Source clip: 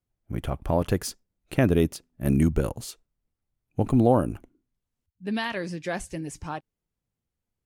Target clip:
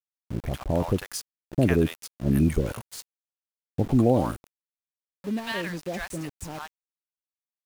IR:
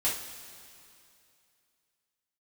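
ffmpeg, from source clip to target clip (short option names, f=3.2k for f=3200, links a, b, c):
-filter_complex "[0:a]acrossover=split=810[a][b];[b]adelay=100[c];[a][c]amix=inputs=2:normalize=0,aeval=exprs='val(0)*gte(abs(val(0)),0.0133)':c=same"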